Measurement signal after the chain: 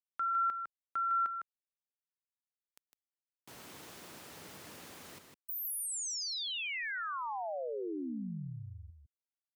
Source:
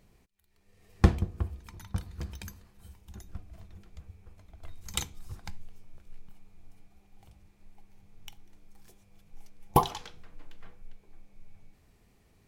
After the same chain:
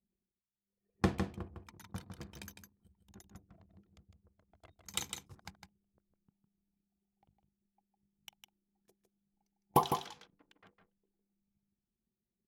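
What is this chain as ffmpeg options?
-af "highpass=150,anlmdn=0.000631,aecho=1:1:156:0.473,volume=-4.5dB"

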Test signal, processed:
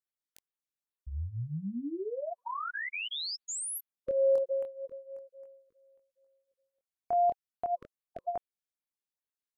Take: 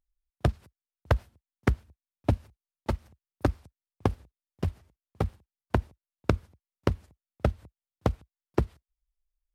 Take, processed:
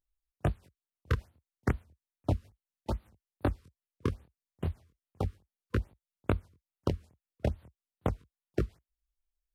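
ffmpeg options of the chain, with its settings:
-af "flanger=delay=19:depth=6.7:speed=0.34,afftfilt=real='re*(1-between(b*sr/1024,680*pow(6900/680,0.5+0.5*sin(2*PI*2.4*pts/sr))/1.41,680*pow(6900/680,0.5+0.5*sin(2*PI*2.4*pts/sr))*1.41))':imag='im*(1-between(b*sr/1024,680*pow(6900/680,0.5+0.5*sin(2*PI*2.4*pts/sr))/1.41,680*pow(6900/680,0.5+0.5*sin(2*PI*2.4*pts/sr))*1.41))':win_size=1024:overlap=0.75,volume=-1dB"

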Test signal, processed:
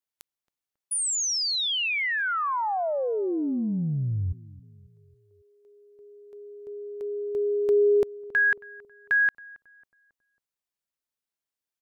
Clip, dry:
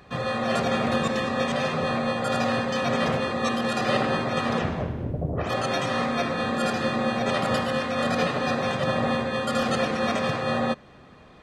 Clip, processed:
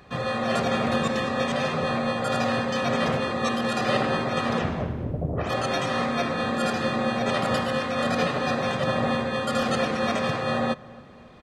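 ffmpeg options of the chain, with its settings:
-filter_complex "[0:a]asplit=2[a][b];[b]adelay=273,lowpass=f=1.2k:p=1,volume=-19.5dB,asplit=2[c][d];[d]adelay=273,lowpass=f=1.2k:p=1,volume=0.52,asplit=2[e][f];[f]adelay=273,lowpass=f=1.2k:p=1,volume=0.52,asplit=2[g][h];[h]adelay=273,lowpass=f=1.2k:p=1,volume=0.52[i];[a][c][e][g][i]amix=inputs=5:normalize=0"

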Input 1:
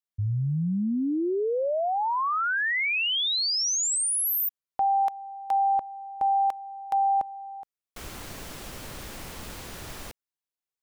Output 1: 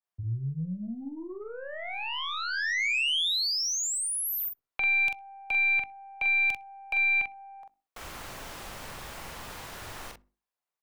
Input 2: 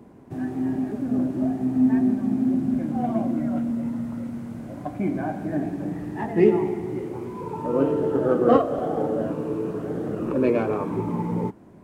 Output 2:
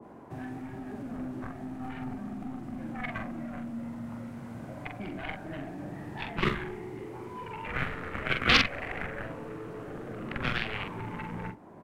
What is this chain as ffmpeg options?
-filter_complex "[0:a]equalizer=f=920:t=o:w=2.4:g=11.5,bandreject=f=50:t=h:w=6,bandreject=f=100:t=h:w=6,bandreject=f=150:t=h:w=6,bandreject=f=200:t=h:w=6,bandreject=f=250:t=h:w=6,bandreject=f=300:t=h:w=6,bandreject=f=350:t=h:w=6,bandreject=f=400:t=h:w=6,asplit=2[a][b];[b]acompressor=threshold=-27dB:ratio=6:attack=47:release=818:detection=rms,volume=-2.5dB[c];[a][c]amix=inputs=2:normalize=0,aeval=exprs='1.5*(cos(1*acos(clip(val(0)/1.5,-1,1)))-cos(1*PI/2))+0.335*(cos(7*acos(clip(val(0)/1.5,-1,1)))-cos(7*PI/2))+0.0106*(cos(8*acos(clip(val(0)/1.5,-1,1)))-cos(8*PI/2))':c=same,acrossover=split=190|1700[d][e][f];[e]acompressor=threshold=-43dB:ratio=2.5:attack=5.8:release=195:knee=2.83:detection=peak[g];[d][g][f]amix=inputs=3:normalize=0,asoftclip=type=tanh:threshold=-3dB,asplit=2[h][i];[i]adelay=44,volume=-5.5dB[j];[h][j]amix=inputs=2:normalize=0,asplit=2[k][l];[l]adelay=63,lowpass=f=1.6k:p=1,volume=-23dB,asplit=2[m][n];[n]adelay=63,lowpass=f=1.6k:p=1,volume=0.38,asplit=2[o][p];[p]adelay=63,lowpass=f=1.6k:p=1,volume=0.38[q];[k][m][o][q]amix=inputs=4:normalize=0,adynamicequalizer=threshold=0.0355:dfrequency=1600:dqfactor=0.7:tfrequency=1600:tqfactor=0.7:attack=5:release=100:ratio=0.375:range=1.5:mode=boostabove:tftype=highshelf,volume=-4.5dB"

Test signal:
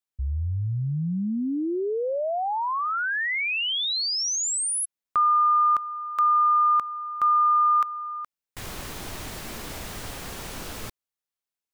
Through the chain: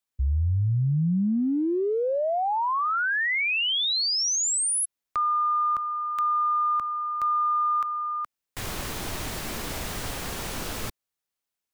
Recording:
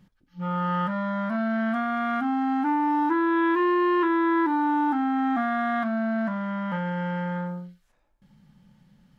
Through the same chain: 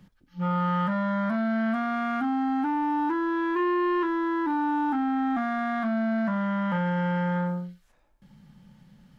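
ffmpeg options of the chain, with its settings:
-filter_complex "[0:a]acrossover=split=170[a][b];[b]acompressor=threshold=-26dB:ratio=6:attack=0.32:release=49:knee=2.83:detection=peak[c];[a][c]amix=inputs=2:normalize=0,volume=3.5dB"

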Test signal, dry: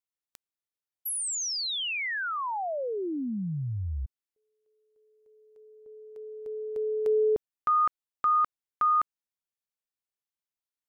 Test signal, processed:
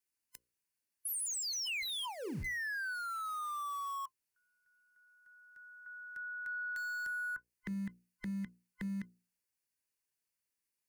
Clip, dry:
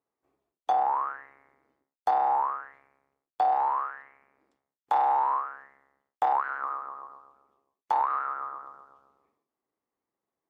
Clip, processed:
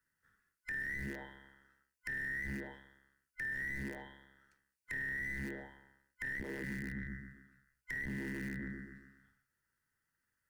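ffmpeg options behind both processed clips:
-filter_complex "[0:a]afftfilt=real='real(if(lt(b,960),b+48*(1-2*mod(floor(b/48),2)),b),0)':imag='imag(if(lt(b,960),b+48*(1-2*mod(floor(b/48),2)),b),0)':win_size=2048:overlap=0.75,asplit=2[a][b];[b]aeval=exprs='val(0)*gte(abs(val(0)),0.0282)':c=same,volume=-10dB[c];[a][c]amix=inputs=2:normalize=0,acrossover=split=160|990[d][e][f];[d]acompressor=threshold=-40dB:ratio=4[g];[e]acompressor=threshold=-41dB:ratio=2[h];[f]acompressor=threshold=-29dB:ratio=8[i];[g][h][i]amix=inputs=3:normalize=0,superequalizer=10b=0.501:13b=0.447:16b=1.41,acompressor=threshold=-42dB:ratio=6:attack=0.67:release=21:knee=1:detection=rms,equalizer=f=700:t=o:w=0.45:g=-11.5,bandreject=f=60:t=h:w=6,bandreject=f=120:t=h:w=6,bandreject=f=180:t=h:w=6,bandreject=f=240:t=h:w=6,bandreject=f=300:t=h:w=6,bandreject=f=360:t=h:w=6,bandreject=f=420:t=h:w=6,bandreject=f=480:t=h:w=6,bandreject=f=540:t=h:w=6,volume=5dB"

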